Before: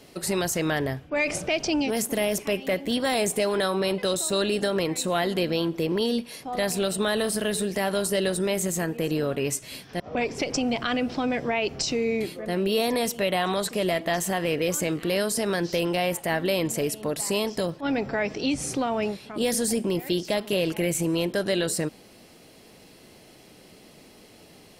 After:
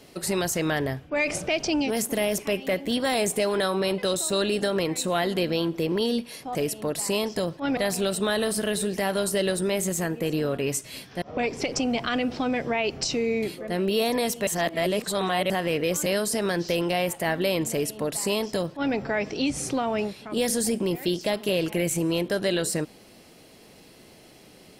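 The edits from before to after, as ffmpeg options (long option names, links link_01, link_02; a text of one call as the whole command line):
ffmpeg -i in.wav -filter_complex "[0:a]asplit=6[link_01][link_02][link_03][link_04][link_05][link_06];[link_01]atrim=end=6.552[link_07];[link_02]atrim=start=16.758:end=17.982[link_08];[link_03]atrim=start=6.548:end=13.252[link_09];[link_04]atrim=start=13.248:end=14.282,asetpts=PTS-STARTPTS,areverse[link_10];[link_05]atrim=start=14.278:end=14.842[link_11];[link_06]atrim=start=15.098[link_12];[link_07][link_08]acrossfade=duration=0.004:curve1=hsin:curve2=hsin[link_13];[link_13][link_09]acrossfade=duration=0.004:curve1=hsin:curve2=hsin[link_14];[link_14][link_10]acrossfade=duration=0.004:curve1=hsin:curve2=hsin[link_15];[link_15][link_11]acrossfade=duration=0.004:curve1=hsin:curve2=hsin[link_16];[link_16][link_12]acrossfade=duration=0.004:curve1=hsin:curve2=hsin" out.wav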